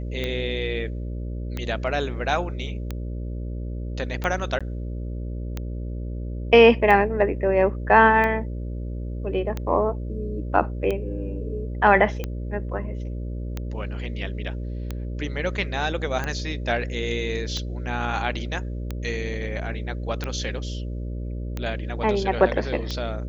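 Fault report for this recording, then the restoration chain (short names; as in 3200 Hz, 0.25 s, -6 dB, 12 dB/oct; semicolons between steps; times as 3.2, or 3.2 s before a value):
buzz 60 Hz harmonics 10 -30 dBFS
tick 45 rpm -15 dBFS
4.59–4.61 gap 16 ms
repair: de-click; de-hum 60 Hz, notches 10; interpolate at 4.59, 16 ms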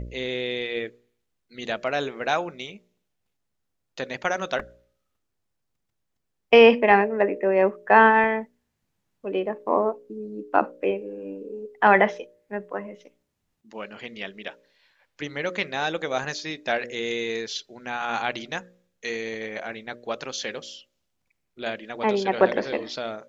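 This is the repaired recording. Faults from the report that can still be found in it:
none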